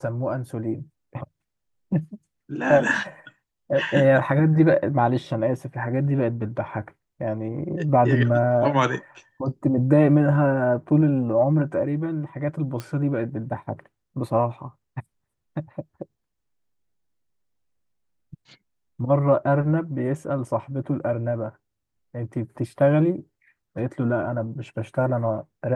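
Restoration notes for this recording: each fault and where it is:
0:12.80: click −17 dBFS

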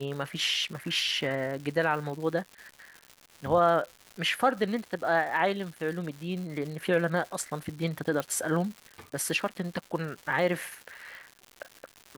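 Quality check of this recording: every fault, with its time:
surface crackle 240 per second −37 dBFS
0:08.20: click −17 dBFS

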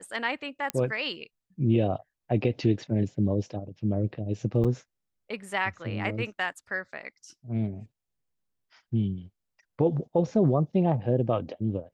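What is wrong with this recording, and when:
0:00.70: click −12 dBFS
0:04.64–0:04.65: drop-out 6.9 ms

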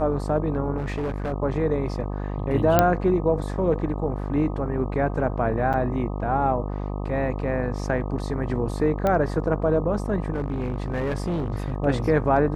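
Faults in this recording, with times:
mains buzz 50 Hz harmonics 25 −29 dBFS
0:00.77–0:01.33: clipping −23.5 dBFS
0:02.79: click −3 dBFS
0:05.73–0:05.74: drop-out 7.7 ms
0:09.07: click −12 dBFS
0:10.33–0:11.72: clipping −22 dBFS

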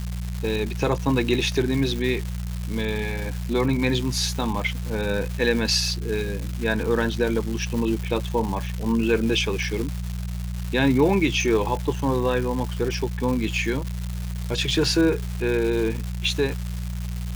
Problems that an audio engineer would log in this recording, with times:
surface crackle 410 per second −28 dBFS
mains hum 60 Hz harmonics 3 −29 dBFS

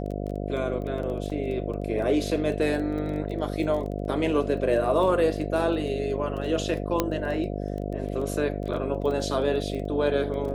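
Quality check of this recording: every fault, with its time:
mains buzz 50 Hz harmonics 14 −31 dBFS
surface crackle 14 per second −33 dBFS
0:01.30: drop-out 3.7 ms
0:07.00: click −8 dBFS

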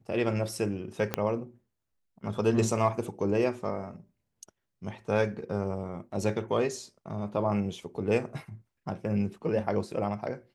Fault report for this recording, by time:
0:01.14: click −12 dBFS

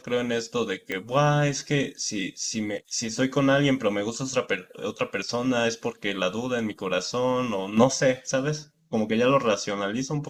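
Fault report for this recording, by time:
0:00.92: click −16 dBFS

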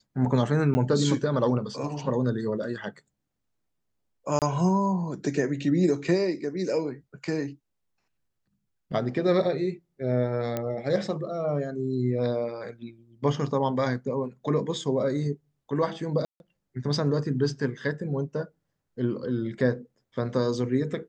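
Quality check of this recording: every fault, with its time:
0:00.74–0:00.75: drop-out 10 ms
0:04.39–0:04.42: drop-out 28 ms
0:10.57: click −15 dBFS
0:16.25–0:16.40: drop-out 151 ms

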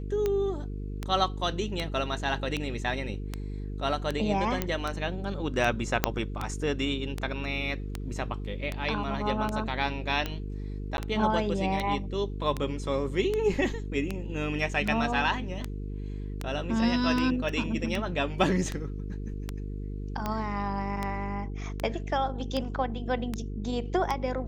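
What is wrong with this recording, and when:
mains buzz 50 Hz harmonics 9 −35 dBFS
scratch tick 78 rpm −16 dBFS
0:04.62: click −12 dBFS
0:06.04: click −5 dBFS
0:10.97–0:10.98: drop-out 11 ms
0:17.49: drop-out 2.5 ms

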